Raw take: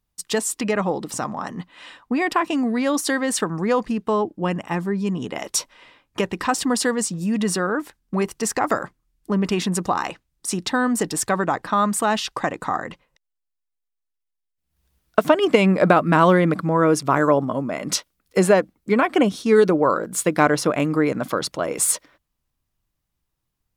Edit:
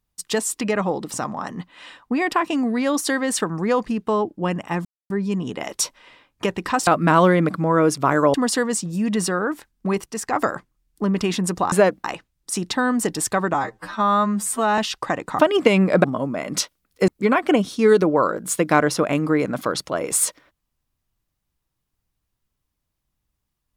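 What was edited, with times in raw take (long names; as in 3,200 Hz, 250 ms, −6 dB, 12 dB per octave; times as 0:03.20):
0:04.85: splice in silence 0.25 s
0:08.34–0:08.59: clip gain −5 dB
0:11.50–0:12.12: time-stretch 2×
0:12.73–0:15.27: remove
0:15.92–0:17.39: move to 0:06.62
0:18.43–0:18.75: move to 0:10.00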